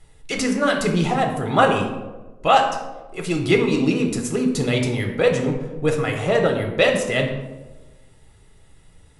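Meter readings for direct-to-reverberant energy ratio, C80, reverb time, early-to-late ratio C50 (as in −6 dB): 2.0 dB, 8.5 dB, 1.2 s, 6.0 dB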